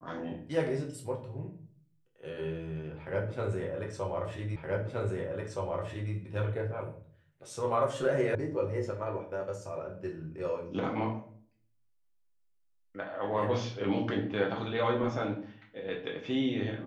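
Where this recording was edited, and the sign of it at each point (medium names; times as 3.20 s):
4.56 s: repeat of the last 1.57 s
8.35 s: sound stops dead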